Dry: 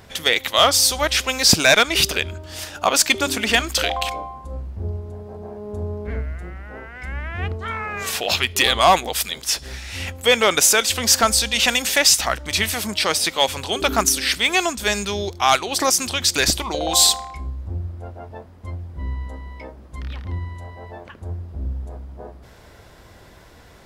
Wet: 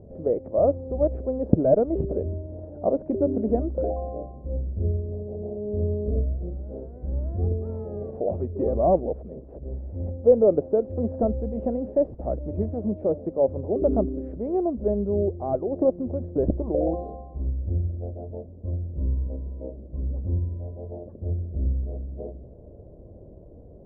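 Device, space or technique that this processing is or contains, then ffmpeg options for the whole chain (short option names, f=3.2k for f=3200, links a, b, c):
under water: -af "lowpass=f=450:w=0.5412,lowpass=f=450:w=1.3066,equalizer=f=600:t=o:w=0.59:g=10.5,volume=2dB"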